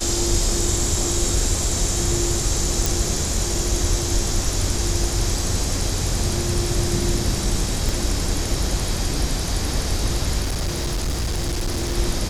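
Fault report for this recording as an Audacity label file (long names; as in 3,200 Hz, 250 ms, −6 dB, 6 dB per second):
2.860000	2.860000	click
7.890000	7.890000	click
10.420000	11.970000	clipping −19.5 dBFS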